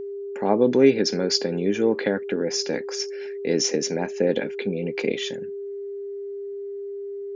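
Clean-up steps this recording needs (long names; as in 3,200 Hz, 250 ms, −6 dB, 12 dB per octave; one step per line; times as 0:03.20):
notch filter 400 Hz, Q 30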